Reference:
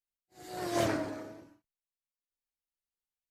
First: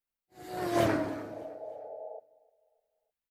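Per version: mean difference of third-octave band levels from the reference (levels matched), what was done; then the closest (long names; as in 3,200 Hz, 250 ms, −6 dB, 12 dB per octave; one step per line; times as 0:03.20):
2.5 dB: healed spectral selection 0:01.22–0:02.17, 430–870 Hz before
parametric band 6,500 Hz −7.5 dB 1.7 octaves
on a send: repeating echo 304 ms, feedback 43%, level −23 dB
on the sum: level +3.5 dB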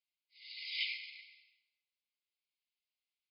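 25.0 dB: linear-phase brick-wall band-pass 2,000–5,200 Hz
high-frequency loss of the air 95 metres
reverb whose tail is shaped and stops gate 440 ms falling, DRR 11.5 dB
level +8 dB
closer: first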